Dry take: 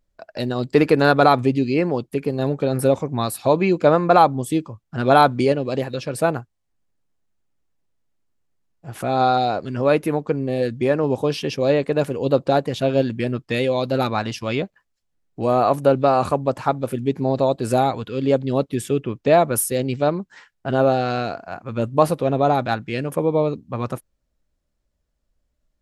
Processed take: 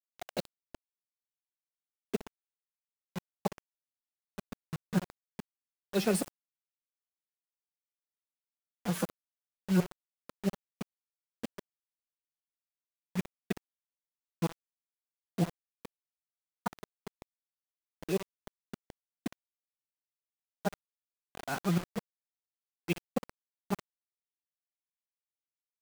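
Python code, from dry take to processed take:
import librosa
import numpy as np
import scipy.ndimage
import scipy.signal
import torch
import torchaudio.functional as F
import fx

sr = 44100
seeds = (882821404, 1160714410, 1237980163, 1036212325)

p1 = fx.gate_flip(x, sr, shuts_db=-14.0, range_db=-42)
p2 = fx.dynamic_eq(p1, sr, hz=120.0, q=1.5, threshold_db=-49.0, ratio=4.0, max_db=8)
p3 = p2 + fx.echo_feedback(p2, sr, ms=60, feedback_pct=59, wet_db=-18.0, dry=0)
p4 = fx.pitch_keep_formants(p3, sr, semitones=7.0)
p5 = fx.env_lowpass(p4, sr, base_hz=400.0, full_db=-28.0)
p6 = fx.quant_dither(p5, sr, seeds[0], bits=6, dither='none')
y = p6 * librosa.db_to_amplitude(-3.0)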